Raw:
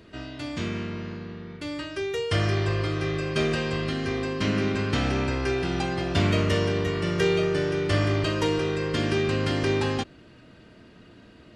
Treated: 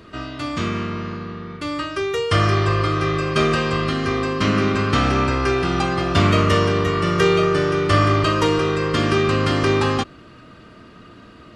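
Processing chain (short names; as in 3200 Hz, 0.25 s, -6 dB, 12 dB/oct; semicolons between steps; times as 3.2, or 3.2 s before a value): bell 1200 Hz +12.5 dB 0.25 oct; gain +6 dB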